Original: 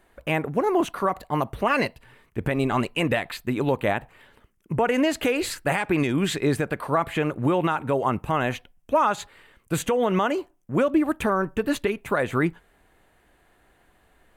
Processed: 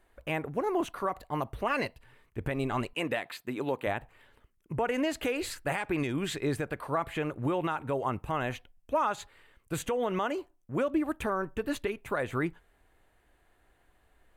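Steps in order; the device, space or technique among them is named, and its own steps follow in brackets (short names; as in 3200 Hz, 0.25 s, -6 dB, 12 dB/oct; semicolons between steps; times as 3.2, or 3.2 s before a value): low shelf boost with a cut just above (low shelf 85 Hz +6 dB; bell 190 Hz -4.5 dB 0.68 oct); 2.93–3.87 HPF 190 Hz 12 dB/oct; gain -7.5 dB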